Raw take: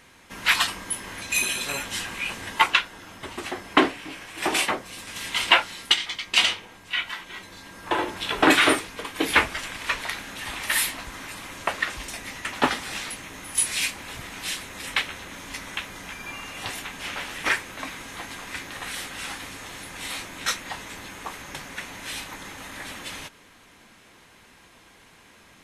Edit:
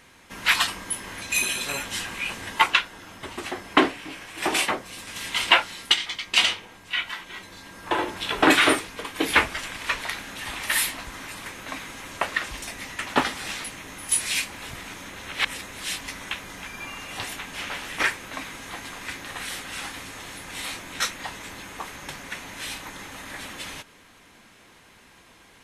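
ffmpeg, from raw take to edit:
ffmpeg -i in.wav -filter_complex "[0:a]asplit=5[link_01][link_02][link_03][link_04][link_05];[link_01]atrim=end=11.462[link_06];[link_02]atrim=start=17.568:end=18.112[link_07];[link_03]atrim=start=11.458:end=14.402[link_08];[link_04]atrim=start=14.398:end=15.472,asetpts=PTS-STARTPTS,areverse[link_09];[link_05]atrim=start=15.468[link_10];[link_06][link_07]acrossfade=duration=0.004:curve1=hsin:curve2=hsin[link_11];[link_11][link_08]acrossfade=duration=0.004:curve1=hsin:curve2=hsin[link_12];[link_12][link_09]acrossfade=duration=0.004:curve1=hsin:curve2=hsin[link_13];[link_13][link_10]acrossfade=duration=0.004:curve1=hsin:curve2=hsin" out.wav

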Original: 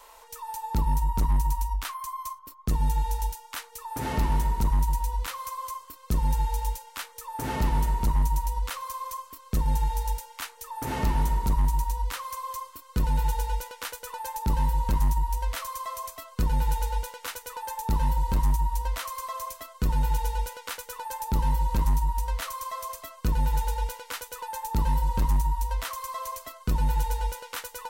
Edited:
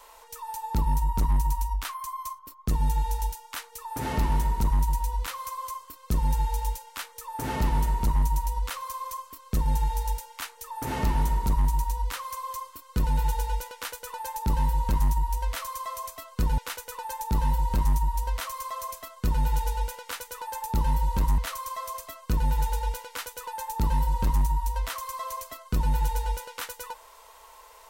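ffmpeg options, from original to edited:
ffmpeg -i in.wav -filter_complex "[0:a]asplit=3[link_01][link_02][link_03];[link_01]atrim=end=16.582[link_04];[link_02]atrim=start=17.158:end=21.962[link_05];[link_03]atrim=start=22.328[link_06];[link_04][link_05]acrossfade=duration=0.004:curve1=hsin:curve2=hsin[link_07];[link_07][link_06]acrossfade=duration=0.004:curve1=hsin:curve2=hsin" out.wav

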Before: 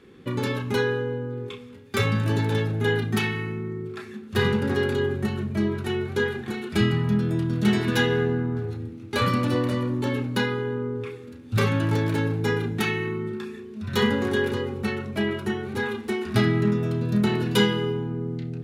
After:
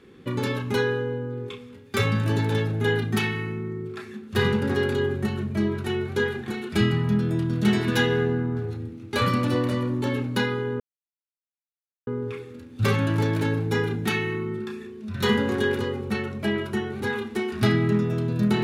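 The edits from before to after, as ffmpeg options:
ffmpeg -i in.wav -filter_complex "[0:a]asplit=2[link_01][link_02];[link_01]atrim=end=10.8,asetpts=PTS-STARTPTS,afade=type=out:start_time=10.796:duration=0.004:curve=hsin,apad=pad_dur=1.27[link_03];[link_02]atrim=start=10.8,asetpts=PTS-STARTPTS,afade=type=in:duration=0.004:curve=hsin[link_04];[link_03][link_04]concat=n=2:v=0:a=1" out.wav

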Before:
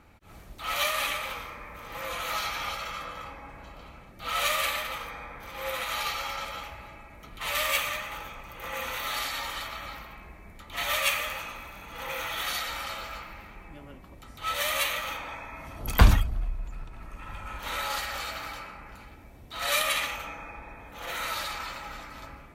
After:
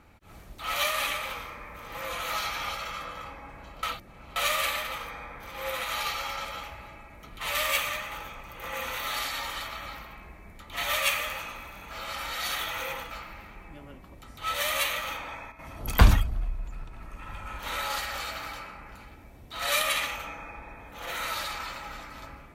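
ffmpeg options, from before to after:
ffmpeg -i in.wav -filter_complex "[0:a]asplit=7[link_01][link_02][link_03][link_04][link_05][link_06][link_07];[link_01]atrim=end=3.832[link_08];[link_02]atrim=start=3.828:end=4.362,asetpts=PTS-STARTPTS,areverse[link_09];[link_03]atrim=start=4.358:end=11.912[link_10];[link_04]atrim=start=11.908:end=13.112,asetpts=PTS-STARTPTS,areverse[link_11];[link_05]atrim=start=13.108:end=15.52,asetpts=PTS-STARTPTS,afade=type=out:start_time=2.032:duration=0.38:curve=log:silence=0.298538[link_12];[link_06]atrim=start=15.52:end=15.59,asetpts=PTS-STARTPTS,volume=-10.5dB[link_13];[link_07]atrim=start=15.59,asetpts=PTS-STARTPTS,afade=type=in:duration=0.38:curve=log:silence=0.298538[link_14];[link_08][link_09]acrossfade=duration=0.004:curve1=hsin:curve2=hsin[link_15];[link_15][link_10]acrossfade=duration=0.004:curve1=hsin:curve2=hsin[link_16];[link_16][link_11]acrossfade=duration=0.004:curve1=hsin:curve2=hsin[link_17];[link_12][link_13][link_14]concat=n=3:v=0:a=1[link_18];[link_17][link_18]acrossfade=duration=0.004:curve1=hsin:curve2=hsin" out.wav

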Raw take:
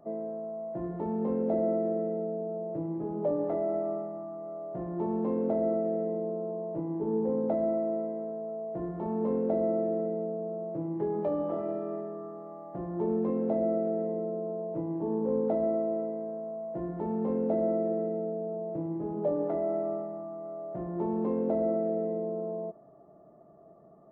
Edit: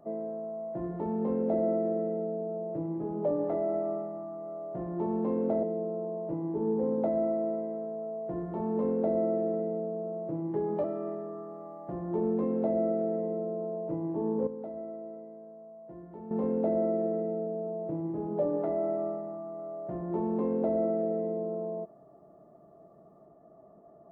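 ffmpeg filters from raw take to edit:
ffmpeg -i in.wav -filter_complex "[0:a]asplit=5[link_01][link_02][link_03][link_04][link_05];[link_01]atrim=end=5.632[link_06];[link_02]atrim=start=6.088:end=11.302[link_07];[link_03]atrim=start=11.698:end=15.332[link_08];[link_04]atrim=start=15.328:end=17.172,asetpts=PTS-STARTPTS,volume=-11.5dB[link_09];[link_05]atrim=start=17.168[link_10];[link_06][link_07]acrossfade=duration=0.004:curve1=hsin:curve2=hsin[link_11];[link_11][link_08]acrossfade=duration=0.004:curve1=hsin:curve2=hsin[link_12];[link_12][link_09]acrossfade=duration=0.004:curve1=hsin:curve2=hsin[link_13];[link_13][link_10]acrossfade=duration=0.004:curve1=hsin:curve2=hsin" out.wav

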